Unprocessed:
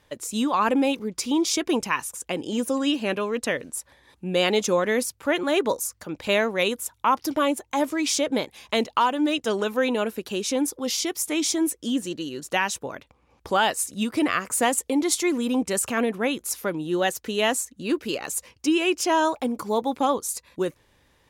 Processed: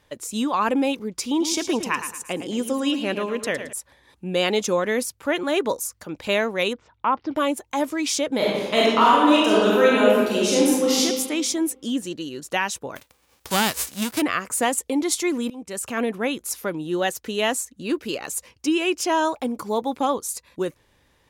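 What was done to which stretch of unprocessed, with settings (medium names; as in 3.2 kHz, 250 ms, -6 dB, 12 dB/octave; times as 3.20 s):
1.29–3.73 s: feedback delay 110 ms, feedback 37%, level -10 dB
6.73–7.36 s: Gaussian low-pass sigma 2.7 samples
8.36–11.00 s: reverb throw, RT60 1.5 s, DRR -6.5 dB
12.95–14.20 s: formants flattened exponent 0.3
15.50–16.06 s: fade in linear, from -22 dB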